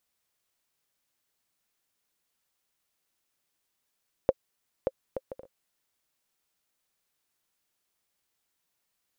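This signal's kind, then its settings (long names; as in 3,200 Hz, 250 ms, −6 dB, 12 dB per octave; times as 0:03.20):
bouncing ball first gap 0.58 s, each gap 0.51, 529 Hz, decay 40 ms −9 dBFS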